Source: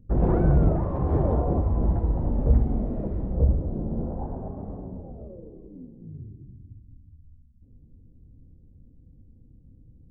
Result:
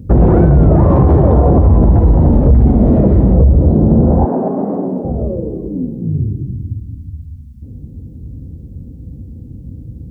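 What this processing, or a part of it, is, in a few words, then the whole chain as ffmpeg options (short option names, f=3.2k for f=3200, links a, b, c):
mastering chain: -filter_complex "[0:a]highpass=f=52:w=0.5412,highpass=f=52:w=1.3066,equalizer=f=1.3k:t=o:w=2.8:g=-3.5,acompressor=threshold=-26dB:ratio=2.5,asoftclip=type=tanh:threshold=-19dB,alimiter=level_in=25dB:limit=-1dB:release=50:level=0:latency=1,asettb=1/sr,asplit=3[a][b][c];[a]atrim=end=4.254[d];[b]atrim=start=4.25:end=5.05,asetpts=PTS-STARTPTS,afade=t=in:d=0.004:c=qsin,afade=t=out:st=0.796:d=0.004:c=qsin,highpass=f=210:w=0.5412,highpass=f=210:w=1.3066[e];[c]atrim=start=5.046[f];[d][e]acrossfade=d=0.004:c1=hsin:c2=qsin[g];[g][f]acrossfade=d=0.004:c1=qsin:c2=hsin,volume=-1dB"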